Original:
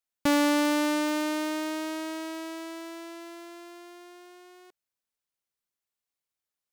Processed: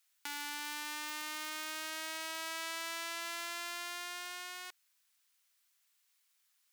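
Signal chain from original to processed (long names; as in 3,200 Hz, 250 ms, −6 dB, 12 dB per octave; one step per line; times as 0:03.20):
gain into a clipping stage and back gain 34 dB
downward compressor 6 to 1, threshold −45 dBFS, peak gain reduction 9 dB
high-pass filter 1,400 Hz 12 dB per octave
level +14.5 dB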